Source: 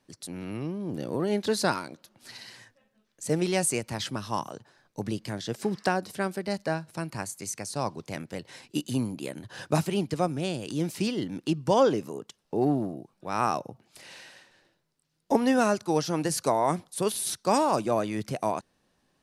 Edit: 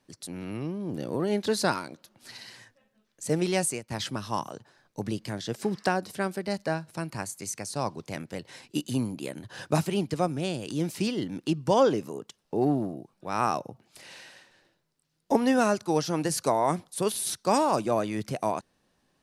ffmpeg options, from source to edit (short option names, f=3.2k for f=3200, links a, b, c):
-filter_complex "[0:a]asplit=2[a][b];[a]atrim=end=3.9,asetpts=PTS-STARTPTS,afade=t=out:st=3.6:d=0.3:silence=0.141254[c];[b]atrim=start=3.9,asetpts=PTS-STARTPTS,afade=t=in:d=0.004:c=hsin:silence=0.141254[d];[c][d]concat=n=2:v=0:a=1"